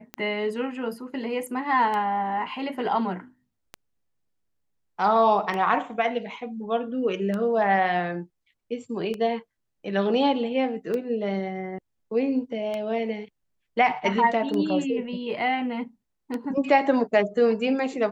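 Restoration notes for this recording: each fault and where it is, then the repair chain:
scratch tick 33 1/3 rpm −18 dBFS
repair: click removal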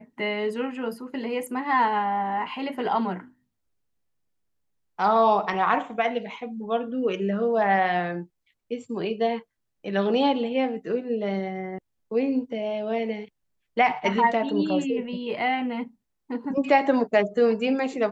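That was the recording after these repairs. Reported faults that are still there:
none of them is left

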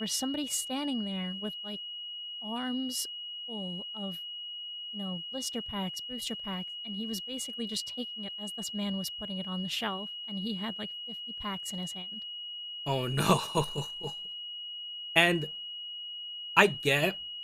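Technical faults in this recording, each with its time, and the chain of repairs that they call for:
whistle 2,900 Hz −38 dBFS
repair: notch filter 2,900 Hz, Q 30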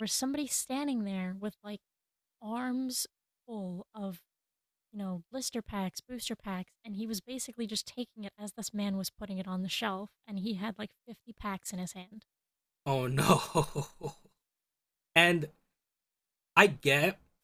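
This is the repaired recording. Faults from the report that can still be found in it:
none of them is left

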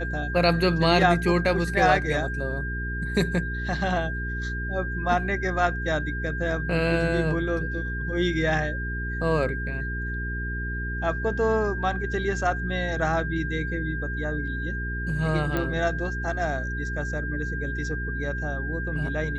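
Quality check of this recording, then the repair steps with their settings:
mains hum 60 Hz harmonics 7 −31 dBFS
whistle 1,600 Hz −32 dBFS
0:15.57: click −14 dBFS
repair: click removal
notch filter 1,600 Hz, Q 30
hum removal 60 Hz, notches 7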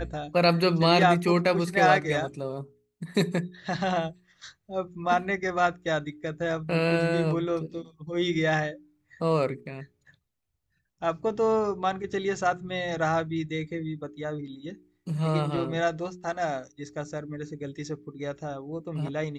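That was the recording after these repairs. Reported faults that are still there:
none of them is left

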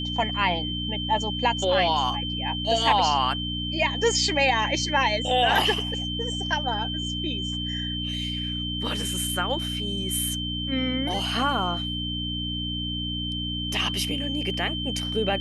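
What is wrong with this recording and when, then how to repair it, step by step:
mains hum 60 Hz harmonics 5 −32 dBFS
whistle 3,100 Hz −30 dBFS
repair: hum removal 60 Hz, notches 5
notch filter 3,100 Hz, Q 30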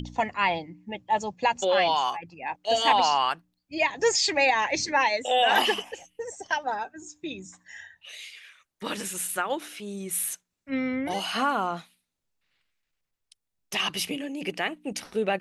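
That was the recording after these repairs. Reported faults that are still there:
none of them is left

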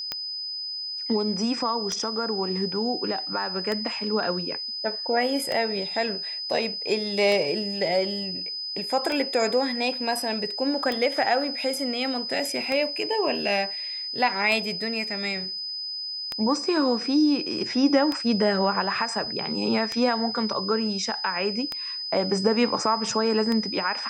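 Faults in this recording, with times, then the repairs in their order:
scratch tick 33 1/3 rpm −13 dBFS
whistle 5,000 Hz −30 dBFS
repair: click removal
notch filter 5,000 Hz, Q 30

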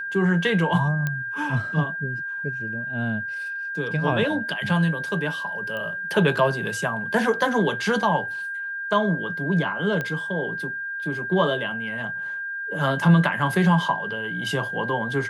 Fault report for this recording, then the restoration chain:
whistle 1,600 Hz −28 dBFS
0:01.07: click −13 dBFS
0:05.77: click −21 dBFS
0:10.01: click −15 dBFS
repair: click removal
notch filter 1,600 Hz, Q 30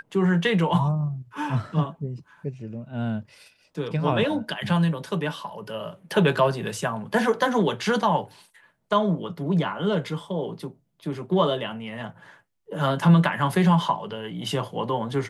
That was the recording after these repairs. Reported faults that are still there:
none of them is left

